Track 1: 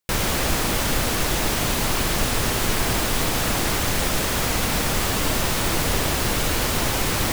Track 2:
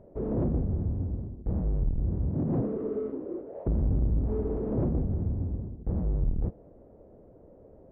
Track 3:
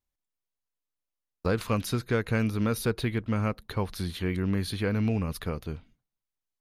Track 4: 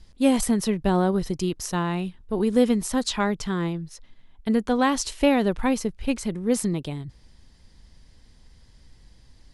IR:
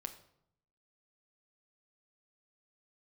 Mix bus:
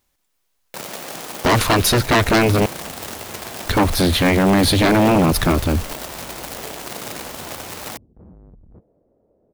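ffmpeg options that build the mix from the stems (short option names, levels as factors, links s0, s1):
-filter_complex "[0:a]acrusher=bits=4:dc=4:mix=0:aa=0.000001,highpass=f=130:w=0.5412,highpass=f=130:w=1.3066,equalizer=f=670:w=1.3:g=5.5,adelay=650,volume=0.316[s0];[1:a]asoftclip=type=tanh:threshold=0.0422,adelay=2300,volume=0.398[s1];[2:a]asubboost=boost=8.5:cutoff=95,aeval=exprs='0.251*sin(PI/2*5.01*val(0)/0.251)':c=same,volume=1.33,asplit=3[s2][s3][s4];[s2]atrim=end=2.66,asetpts=PTS-STARTPTS,afade=t=out:st=2.656:d=0.004:c=hsin[s5];[s3]atrim=start=2.66:end=3.65,asetpts=PTS-STARTPTS,volume=0[s6];[s4]atrim=start=3.65,asetpts=PTS-STARTPTS,afade=t=in:d=0.004:c=hsin[s7];[s5][s6][s7]concat=n=3:v=0:a=1[s8];[s0][s1][s8]amix=inputs=3:normalize=0,lowshelf=f=83:g=-10.5"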